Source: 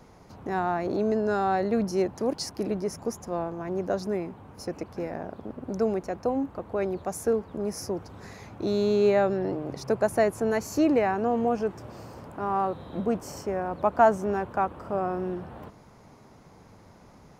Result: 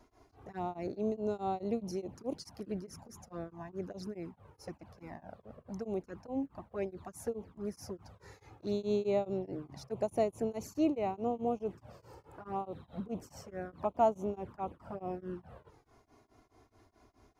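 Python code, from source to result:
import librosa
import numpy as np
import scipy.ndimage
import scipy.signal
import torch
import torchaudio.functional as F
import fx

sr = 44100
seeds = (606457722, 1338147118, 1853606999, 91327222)

y = fx.env_flanger(x, sr, rest_ms=3.2, full_db=-22.5)
y = y * np.abs(np.cos(np.pi * 4.7 * np.arange(len(y)) / sr))
y = y * librosa.db_to_amplitude(-5.5)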